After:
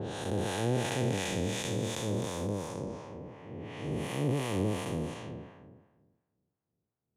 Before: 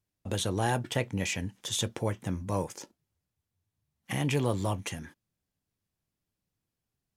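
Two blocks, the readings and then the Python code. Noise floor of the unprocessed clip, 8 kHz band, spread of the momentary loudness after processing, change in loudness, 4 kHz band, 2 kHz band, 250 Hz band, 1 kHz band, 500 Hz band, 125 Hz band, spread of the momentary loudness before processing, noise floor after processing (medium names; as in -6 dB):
under -85 dBFS, -3.5 dB, 14 LU, -1.5 dB, -3.0 dB, -2.5 dB, +1.0 dB, -3.0 dB, +1.0 dB, -1.0 dB, 11 LU, under -85 dBFS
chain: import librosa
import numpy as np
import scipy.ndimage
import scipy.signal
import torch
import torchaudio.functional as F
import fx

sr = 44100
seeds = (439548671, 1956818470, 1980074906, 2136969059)

y = fx.spec_blur(x, sr, span_ms=1070.0)
y = scipy.signal.sosfilt(scipy.signal.butter(2, 99.0, 'highpass', fs=sr, output='sos'), y)
y = fx.peak_eq(y, sr, hz=430.0, db=4.0, octaves=0.69)
y = fx.env_lowpass(y, sr, base_hz=940.0, full_db=-36.0)
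y = fx.harmonic_tremolo(y, sr, hz=2.8, depth_pct=70, crossover_hz=680.0)
y = y * librosa.db_to_amplitude(8.5)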